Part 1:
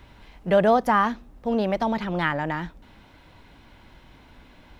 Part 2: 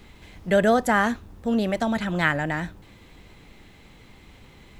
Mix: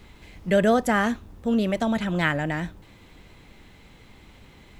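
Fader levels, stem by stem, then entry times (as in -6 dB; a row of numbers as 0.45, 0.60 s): -10.5, -1.0 dB; 0.00, 0.00 s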